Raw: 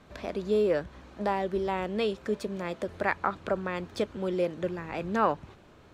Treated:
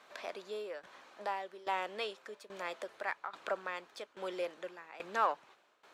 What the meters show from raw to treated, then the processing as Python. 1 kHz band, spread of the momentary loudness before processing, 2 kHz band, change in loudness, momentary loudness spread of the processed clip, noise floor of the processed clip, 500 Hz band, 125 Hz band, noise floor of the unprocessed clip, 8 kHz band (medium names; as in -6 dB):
-5.5 dB, 8 LU, -5.0 dB, -9.0 dB, 14 LU, -69 dBFS, -12.0 dB, under -25 dB, -55 dBFS, -5.0 dB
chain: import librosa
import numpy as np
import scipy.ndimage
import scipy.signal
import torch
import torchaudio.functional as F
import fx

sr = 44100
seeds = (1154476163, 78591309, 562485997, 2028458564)

p1 = scipy.signal.sosfilt(scipy.signal.butter(2, 710.0, 'highpass', fs=sr, output='sos'), x)
p2 = fx.tremolo_shape(p1, sr, shape='saw_down', hz=1.2, depth_pct=85)
p3 = 10.0 ** (-34.0 / 20.0) * np.tanh(p2 / 10.0 ** (-34.0 / 20.0))
p4 = p2 + (p3 * 10.0 ** (-9.0 / 20.0))
y = p4 * 10.0 ** (-1.5 / 20.0)